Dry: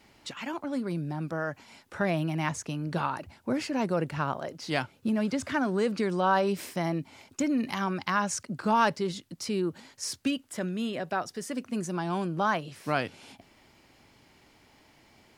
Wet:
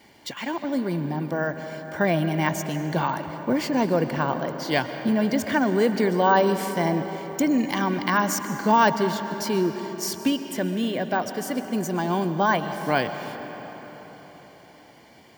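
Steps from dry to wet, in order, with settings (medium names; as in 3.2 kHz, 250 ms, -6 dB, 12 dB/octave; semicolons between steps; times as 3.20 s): comb of notches 1.3 kHz; reverberation RT60 4.7 s, pre-delay 85 ms, DRR 8.5 dB; careless resampling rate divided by 2×, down none, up hold; trim +6.5 dB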